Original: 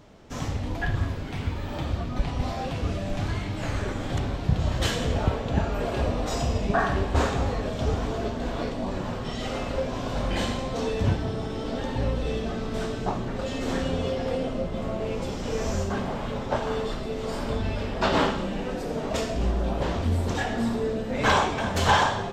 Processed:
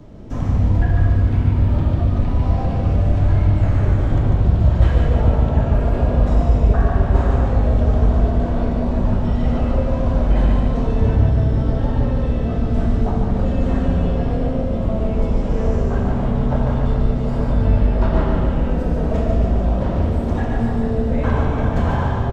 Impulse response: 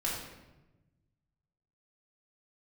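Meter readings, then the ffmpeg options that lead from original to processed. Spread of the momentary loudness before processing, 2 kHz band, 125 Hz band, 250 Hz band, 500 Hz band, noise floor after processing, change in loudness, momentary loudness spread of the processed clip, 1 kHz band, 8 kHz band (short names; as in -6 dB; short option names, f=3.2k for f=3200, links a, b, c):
7 LU, -3.0 dB, +12.5 dB, +8.5 dB, +4.0 dB, -21 dBFS, +9.0 dB, 4 LU, +0.5 dB, under -10 dB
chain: -filter_complex "[0:a]lowshelf=f=470:g=4.5,acrossover=split=150|540|2400[a][b][c][d];[a]acompressor=threshold=-27dB:ratio=4[e];[b]acompressor=threshold=-40dB:ratio=4[f];[c]acompressor=threshold=-29dB:ratio=4[g];[d]acompressor=threshold=-52dB:ratio=4[h];[e][f][g][h]amix=inputs=4:normalize=0,tiltshelf=f=690:g=6.5,aecho=1:1:146|292|438|584|730|876|1022:0.631|0.322|0.164|0.0837|0.0427|0.0218|0.0111,asplit=2[i][j];[1:a]atrim=start_sample=2205[k];[j][k]afir=irnorm=-1:irlink=0,volume=-6.5dB[l];[i][l]amix=inputs=2:normalize=0"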